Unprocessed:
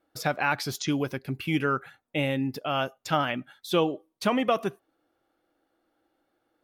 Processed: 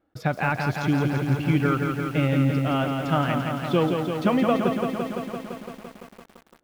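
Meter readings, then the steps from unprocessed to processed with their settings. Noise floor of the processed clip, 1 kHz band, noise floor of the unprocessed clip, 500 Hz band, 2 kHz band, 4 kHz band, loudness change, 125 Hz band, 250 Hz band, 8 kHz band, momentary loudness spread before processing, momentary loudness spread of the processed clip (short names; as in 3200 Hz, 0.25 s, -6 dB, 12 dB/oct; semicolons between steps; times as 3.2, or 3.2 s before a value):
-58 dBFS, +2.5 dB, -76 dBFS, +3.5 dB, +1.5 dB, -2.0 dB, +4.5 dB, +10.5 dB, +6.5 dB, n/a, 6 LU, 12 LU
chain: block floating point 5-bit; tone controls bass +9 dB, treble -14 dB; lo-fi delay 0.17 s, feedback 80%, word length 8-bit, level -5 dB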